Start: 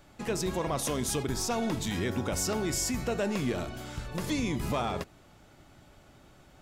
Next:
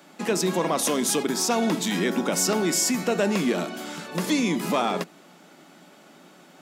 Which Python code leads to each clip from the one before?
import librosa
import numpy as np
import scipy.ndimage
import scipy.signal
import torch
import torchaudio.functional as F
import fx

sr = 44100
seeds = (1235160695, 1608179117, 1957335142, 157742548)

y = scipy.signal.sosfilt(scipy.signal.cheby1(5, 1.0, 170.0, 'highpass', fs=sr, output='sos'), x)
y = F.gain(torch.from_numpy(y), 8.0).numpy()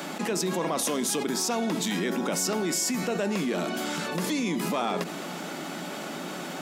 y = fx.env_flatten(x, sr, amount_pct=70)
y = F.gain(torch.from_numpy(y), -6.5).numpy()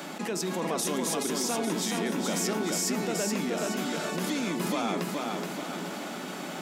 y = fx.echo_feedback(x, sr, ms=424, feedback_pct=49, wet_db=-3.5)
y = F.gain(torch.from_numpy(y), -3.5).numpy()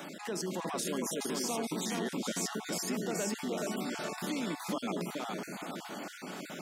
y = fx.spec_dropout(x, sr, seeds[0], share_pct=26)
y = F.gain(torch.from_numpy(y), -4.5).numpy()